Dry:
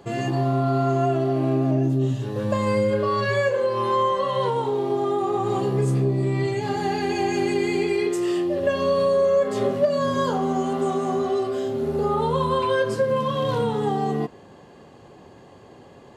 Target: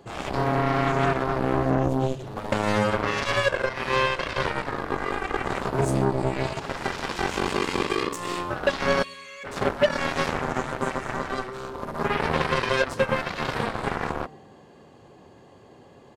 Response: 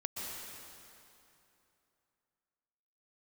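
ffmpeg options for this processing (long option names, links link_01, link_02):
-filter_complex "[0:a]asplit=3[link_01][link_02][link_03];[link_01]afade=type=out:start_time=9.02:duration=0.02[link_04];[link_02]highpass=frequency=2300:width_type=q:width=5.7,afade=type=in:start_time=9.02:duration=0.02,afade=type=out:start_time=9.43:duration=0.02[link_05];[link_03]afade=type=in:start_time=9.43:duration=0.02[link_06];[link_04][link_05][link_06]amix=inputs=3:normalize=0,aecho=1:1:114|228|342|456:0.0794|0.0453|0.0258|0.0147,aeval=exprs='0.355*(cos(1*acos(clip(val(0)/0.355,-1,1)))-cos(1*PI/2))+0.0891*(cos(7*acos(clip(val(0)/0.355,-1,1)))-cos(7*PI/2))':channel_layout=same,volume=-1dB"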